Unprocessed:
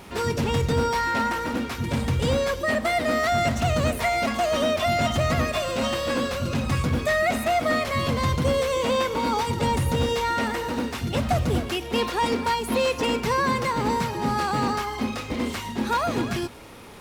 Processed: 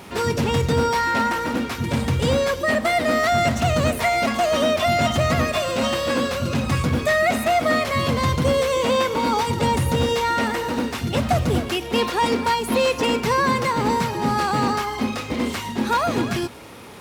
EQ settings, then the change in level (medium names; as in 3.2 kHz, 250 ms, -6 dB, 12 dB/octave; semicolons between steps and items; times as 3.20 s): high-pass 73 Hz; +3.5 dB